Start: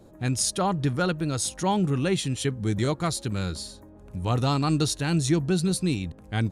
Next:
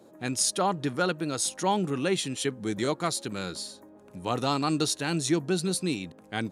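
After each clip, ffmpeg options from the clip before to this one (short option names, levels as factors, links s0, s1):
-af "highpass=240"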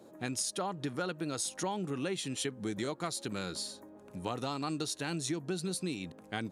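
-af "acompressor=threshold=0.0282:ratio=6,volume=0.891"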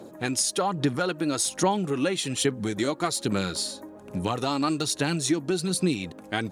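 -af "aphaser=in_gain=1:out_gain=1:delay=3.6:decay=0.38:speed=1.2:type=sinusoidal,volume=2.66"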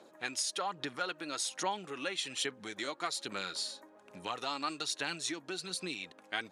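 -af "bandpass=f=2500:t=q:w=0.53:csg=0,volume=0.596"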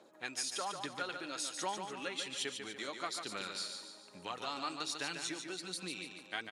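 -af "aecho=1:1:145|290|435|580|725|870:0.473|0.222|0.105|0.0491|0.0231|0.0109,volume=0.631"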